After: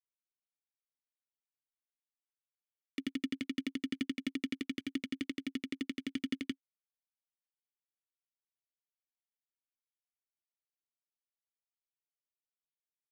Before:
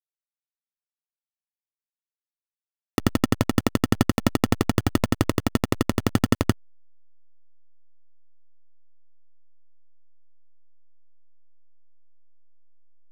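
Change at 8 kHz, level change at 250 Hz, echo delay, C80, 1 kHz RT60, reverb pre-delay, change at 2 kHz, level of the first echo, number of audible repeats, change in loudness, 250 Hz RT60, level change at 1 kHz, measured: -21.0 dB, -13.0 dB, no echo, no reverb, no reverb, no reverb, -12.0 dB, no echo, no echo, -15.5 dB, no reverb, -31.5 dB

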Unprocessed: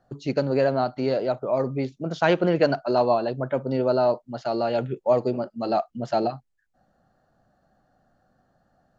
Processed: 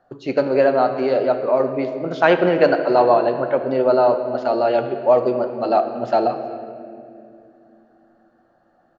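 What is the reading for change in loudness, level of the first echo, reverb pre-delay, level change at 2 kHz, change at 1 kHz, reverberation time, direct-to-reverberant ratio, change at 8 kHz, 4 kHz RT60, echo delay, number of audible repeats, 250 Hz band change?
+6.0 dB, -23.5 dB, 6 ms, +7.0 dB, +7.0 dB, 2.5 s, 7.0 dB, no reading, 1.5 s, 370 ms, 1, +3.5 dB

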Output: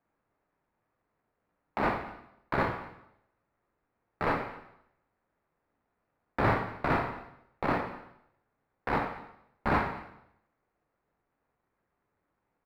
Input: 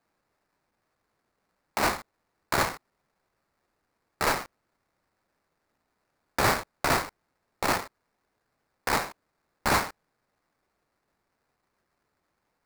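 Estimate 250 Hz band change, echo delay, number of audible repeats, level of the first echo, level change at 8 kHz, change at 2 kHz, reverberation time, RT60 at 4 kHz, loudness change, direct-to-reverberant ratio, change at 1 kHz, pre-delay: +1.5 dB, 227 ms, 1, -21.0 dB, under -25 dB, -5.0 dB, 0.80 s, 0.75 s, -4.0 dB, 4.0 dB, -2.5 dB, 6 ms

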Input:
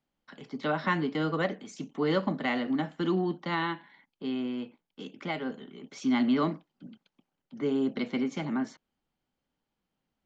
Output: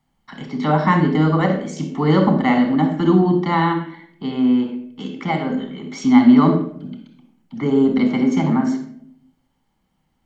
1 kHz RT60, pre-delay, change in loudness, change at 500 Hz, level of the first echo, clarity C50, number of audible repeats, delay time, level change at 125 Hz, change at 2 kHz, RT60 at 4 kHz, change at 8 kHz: 0.60 s, 27 ms, +13.5 dB, +10.5 dB, no echo, 6.5 dB, no echo, no echo, +17.0 dB, +7.5 dB, 0.45 s, no reading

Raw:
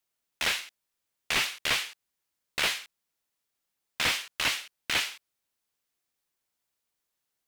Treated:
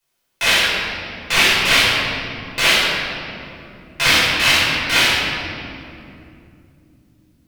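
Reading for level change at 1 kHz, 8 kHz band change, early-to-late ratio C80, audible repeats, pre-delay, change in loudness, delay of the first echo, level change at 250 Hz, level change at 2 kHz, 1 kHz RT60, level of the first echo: +15.5 dB, +12.0 dB, -1.0 dB, no echo, 6 ms, +13.5 dB, no echo, +19.0 dB, +15.5 dB, 2.4 s, no echo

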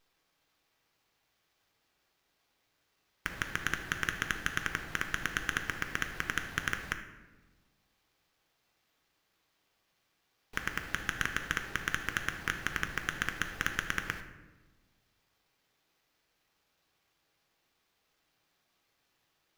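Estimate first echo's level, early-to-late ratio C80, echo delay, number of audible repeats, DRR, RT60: no echo, 11.5 dB, no echo, no echo, 5.5 dB, 1.2 s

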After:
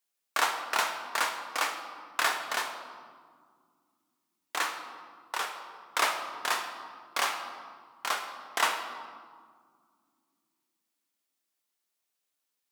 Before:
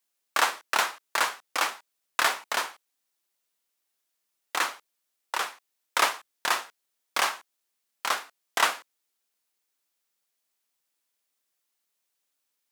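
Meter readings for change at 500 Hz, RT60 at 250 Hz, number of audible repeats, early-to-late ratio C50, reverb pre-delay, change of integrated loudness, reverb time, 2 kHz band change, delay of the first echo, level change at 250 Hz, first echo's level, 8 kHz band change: -2.5 dB, 3.6 s, no echo, 7.0 dB, 3 ms, -3.5 dB, 2.0 s, -3.0 dB, no echo, -2.0 dB, no echo, -3.5 dB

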